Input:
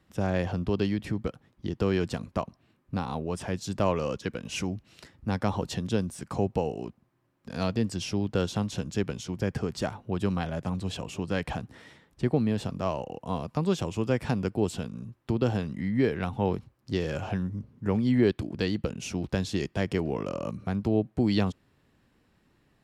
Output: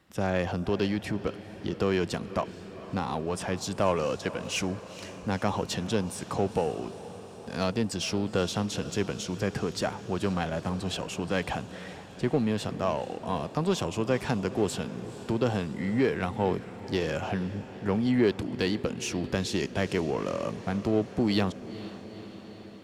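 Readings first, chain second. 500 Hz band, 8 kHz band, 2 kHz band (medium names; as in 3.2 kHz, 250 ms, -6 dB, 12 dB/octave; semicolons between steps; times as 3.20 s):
+1.5 dB, +4.5 dB, +3.0 dB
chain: bass shelf 210 Hz -8 dB; in parallel at -3 dB: saturation -30.5 dBFS, distortion -7 dB; on the sum: echo that smears into a reverb 472 ms, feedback 68%, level -15 dB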